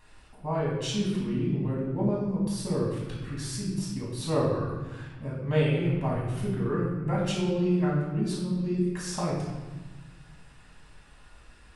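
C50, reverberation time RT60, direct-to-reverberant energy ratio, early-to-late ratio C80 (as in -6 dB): 1.5 dB, 1.3 s, -5.5 dB, 4.0 dB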